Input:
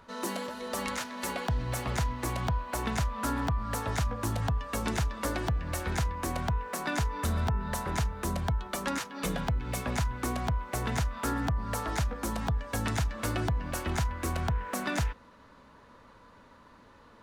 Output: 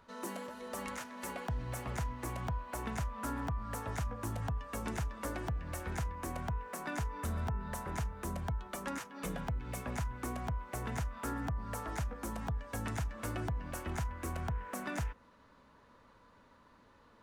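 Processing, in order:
dynamic equaliser 4,100 Hz, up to −7 dB, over −54 dBFS, Q 1.5
level −7 dB

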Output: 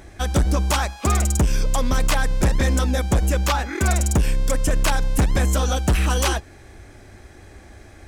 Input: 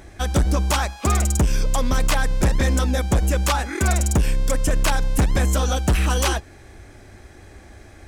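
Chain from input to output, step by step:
0:03.36–0:03.80: parametric band 9,400 Hz −4 dB → −12 dB 0.63 octaves

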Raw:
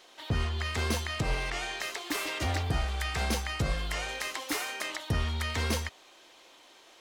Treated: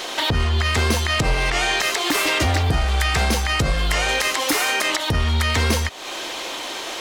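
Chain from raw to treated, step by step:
in parallel at −11 dB: soft clipping −31.5 dBFS, distortion −10 dB
on the sum: downward compressor 6 to 1, threshold −42 dBFS, peak gain reduction 17 dB
boost into a limiter +33 dB
level −8.5 dB

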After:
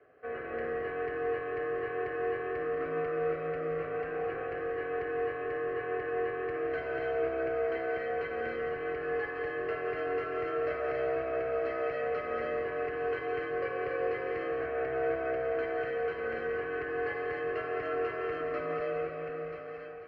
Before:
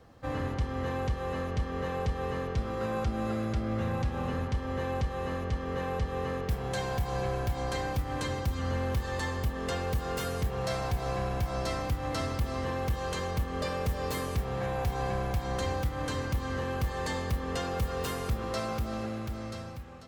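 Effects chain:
phaser with its sweep stopped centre 990 Hz, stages 6
single-sideband voice off tune −60 Hz 220–3,400 Hz
reverb whose tail is shaped and stops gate 320 ms rising, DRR −1.5 dB

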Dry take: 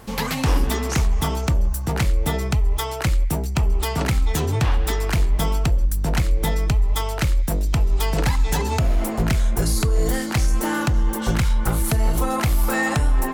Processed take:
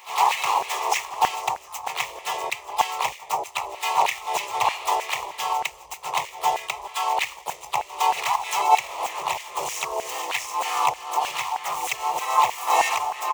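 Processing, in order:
running median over 9 samples
EQ curve with evenly spaced ripples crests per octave 0.71, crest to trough 12 dB
pitch-shifted copies added −3 semitones −1 dB, +3 semitones −10 dB, +7 semitones −8 dB
phaser with its sweep stopped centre 630 Hz, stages 4
auto-filter high-pass saw down 3.2 Hz 810–2,000 Hz
echo ahead of the sound 110 ms −19 dB
level +3.5 dB

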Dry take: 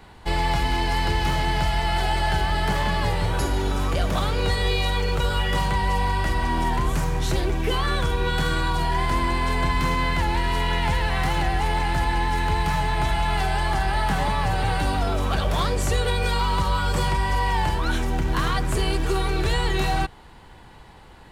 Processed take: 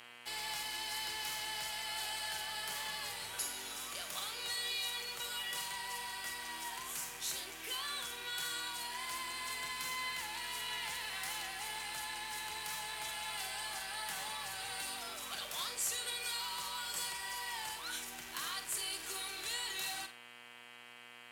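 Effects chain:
hum with harmonics 120 Hz, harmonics 27, −35 dBFS −4 dB per octave
first difference
flutter between parallel walls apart 7.9 metres, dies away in 0.28 s
level −3 dB

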